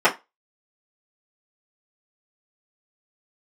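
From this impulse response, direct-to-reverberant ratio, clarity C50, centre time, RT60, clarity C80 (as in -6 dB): -9.0 dB, 16.0 dB, 14 ms, 0.20 s, 24.0 dB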